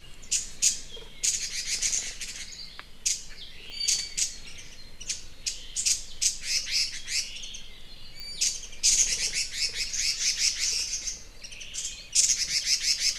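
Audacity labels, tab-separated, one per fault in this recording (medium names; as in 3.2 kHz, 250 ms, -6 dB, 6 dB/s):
3.700000	3.700000	pop -29 dBFS
8.200000	8.200000	pop -23 dBFS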